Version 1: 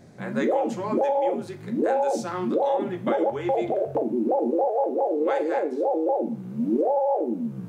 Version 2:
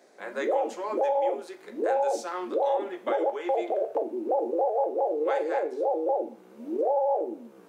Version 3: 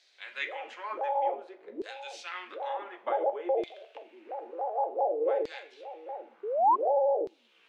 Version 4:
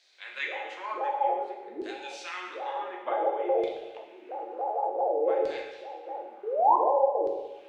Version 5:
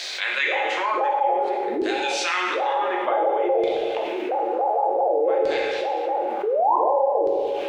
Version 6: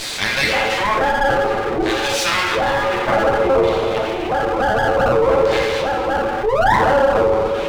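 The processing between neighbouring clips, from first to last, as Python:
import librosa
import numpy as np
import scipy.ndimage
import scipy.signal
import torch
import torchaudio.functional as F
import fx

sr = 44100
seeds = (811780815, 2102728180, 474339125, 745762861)

y1 = scipy.signal.sosfilt(scipy.signal.butter(4, 370.0, 'highpass', fs=sr, output='sos'), x)
y1 = y1 * 10.0 ** (-2.0 / 20.0)
y2 = fx.peak_eq(y1, sr, hz=2900.0, db=11.5, octaves=1.5)
y2 = fx.spec_paint(y2, sr, seeds[0], shape='rise', start_s=6.43, length_s=0.33, low_hz=390.0, high_hz=1100.0, level_db=-20.0)
y2 = fx.filter_lfo_bandpass(y2, sr, shape='saw_down', hz=0.55, low_hz=410.0, high_hz=4500.0, q=2.0)
y3 = fx.rev_plate(y2, sr, seeds[1], rt60_s=1.1, hf_ratio=1.0, predelay_ms=0, drr_db=1.0)
y4 = fx.env_flatten(y3, sr, amount_pct=70)
y5 = fx.lower_of_two(y4, sr, delay_ms=9.1)
y5 = y5 * 10.0 ** (7.0 / 20.0)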